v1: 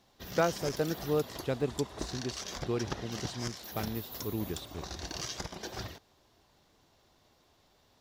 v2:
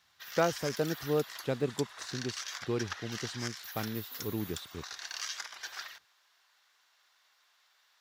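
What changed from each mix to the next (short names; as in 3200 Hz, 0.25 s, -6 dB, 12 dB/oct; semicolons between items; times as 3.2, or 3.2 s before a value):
background: add resonant high-pass 1500 Hz, resonance Q 1.8; master: add HPF 74 Hz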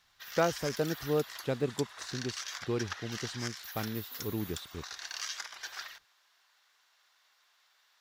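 master: remove HPF 74 Hz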